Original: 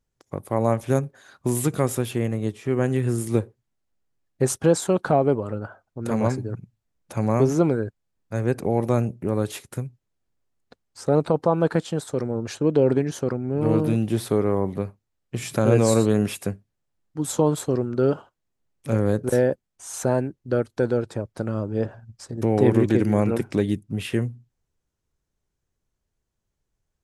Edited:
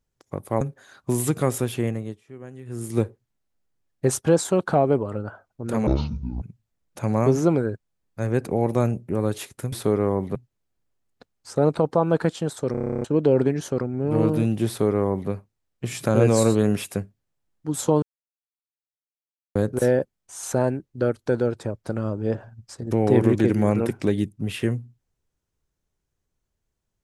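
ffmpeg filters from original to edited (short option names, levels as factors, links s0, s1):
-filter_complex "[0:a]asplit=21[s0][s1][s2][s3][s4][s5][s6][s7][s8][s9][s10][s11][s12][s13][s14][s15][s16][s17][s18][s19][s20];[s0]atrim=end=0.612[s21];[s1]atrim=start=0.978:end=2.58,asetpts=PTS-STARTPTS,afade=t=out:st=1.242:d=0.36:silence=0.125893[s22];[s2]atrim=start=2.58:end=3.02,asetpts=PTS-STARTPTS,volume=0.126[s23];[s3]atrim=start=3.02:end=6.244,asetpts=PTS-STARTPTS,afade=t=in:d=0.36:silence=0.125893[s24];[s4]atrim=start=6.24:end=6.55,asetpts=PTS-STARTPTS,asetrate=25137,aresample=44100,atrim=end_sample=23984,asetpts=PTS-STARTPTS[s25];[s5]atrim=start=6.546:end=9.862[s26];[s6]atrim=start=14.178:end=14.812[s27];[s7]atrim=start=9.858:end=12.252[s28];[s8]atrim=start=12.218:end=12.252[s29];[s9]atrim=start=12.218:end=12.252[s30];[s10]atrim=start=12.218:end=12.252[s31];[s11]atrim=start=12.218:end=12.252[s32];[s12]atrim=start=12.218:end=12.252[s33];[s13]atrim=start=12.218:end=12.252[s34];[s14]atrim=start=12.218:end=12.252[s35];[s15]atrim=start=12.218:end=12.252[s36];[s16]atrim=start=12.218:end=12.252[s37];[s17]atrim=start=12.218:end=12.252[s38];[s18]atrim=start=12.548:end=17.53,asetpts=PTS-STARTPTS,afade=t=out:st=4.978:d=0.004:c=hsin[s39];[s19]atrim=start=17.53:end=19.06,asetpts=PTS-STARTPTS,volume=0[s40];[s20]atrim=start=19.06,asetpts=PTS-STARTPTS,afade=t=in:d=0.004:c=hsin[s41];[s22][s23][s24]concat=n=3:v=0:a=1[s42];[s21][s42]acrossfade=d=0.004:c1=hsin:c2=hsin[s43];[s43][s25]acrossfade=d=0.004:c1=hsin:c2=hsin[s44];[s44][s26]acrossfade=d=0.004:c1=hsin:c2=hsin[s45];[s45][s27]acrossfade=d=0.004:c1=hsin:c2=hsin[s46];[s46][s28]acrossfade=d=0.004:c1=hsin:c2=hsin[s47];[s47][s29]acrossfade=d=0.004:c1=hsin:c2=hsin[s48];[s48][s30]acrossfade=d=0.004:c1=hsin:c2=hsin[s49];[s49][s31]acrossfade=d=0.004:c1=hsin:c2=hsin[s50];[s50][s32]acrossfade=d=0.004:c1=hsin:c2=hsin[s51];[s51][s33]acrossfade=d=0.004:c1=hsin:c2=hsin[s52];[s52][s34]acrossfade=d=0.004:c1=hsin:c2=hsin[s53];[s53][s35]acrossfade=d=0.004:c1=hsin:c2=hsin[s54];[s54][s36]acrossfade=d=0.004:c1=hsin:c2=hsin[s55];[s55][s37]acrossfade=d=0.004:c1=hsin:c2=hsin[s56];[s56][s38]acrossfade=d=0.004:c1=hsin:c2=hsin[s57];[s39][s40][s41]concat=n=3:v=0:a=1[s58];[s57][s58]acrossfade=d=0.004:c1=hsin:c2=hsin"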